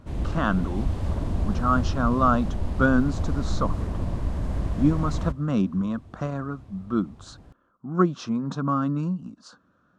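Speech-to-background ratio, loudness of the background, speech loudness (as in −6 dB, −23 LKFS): 3.5 dB, −30.0 LKFS, −26.5 LKFS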